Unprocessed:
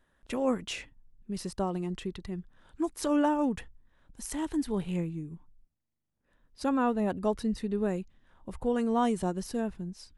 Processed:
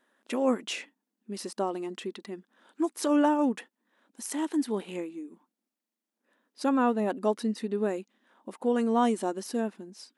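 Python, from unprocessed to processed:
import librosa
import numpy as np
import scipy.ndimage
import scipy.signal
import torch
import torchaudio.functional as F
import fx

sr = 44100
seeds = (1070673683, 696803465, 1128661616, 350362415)

y = fx.brickwall_highpass(x, sr, low_hz=200.0)
y = y * librosa.db_to_amplitude(2.5)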